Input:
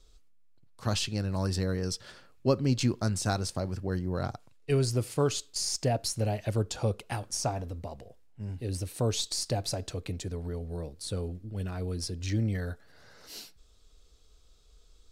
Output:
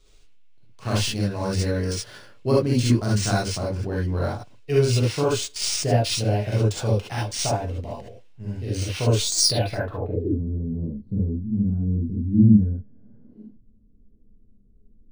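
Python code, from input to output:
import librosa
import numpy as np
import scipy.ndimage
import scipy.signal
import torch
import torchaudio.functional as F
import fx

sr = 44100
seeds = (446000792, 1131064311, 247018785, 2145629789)

y = fx.rev_gated(x, sr, seeds[0], gate_ms=90, shape='rising', drr_db=-5.5)
y = fx.filter_sweep_lowpass(y, sr, from_hz=12000.0, to_hz=220.0, start_s=9.21, end_s=10.42, q=6.5)
y = np.interp(np.arange(len(y)), np.arange(len(y))[::3], y[::3])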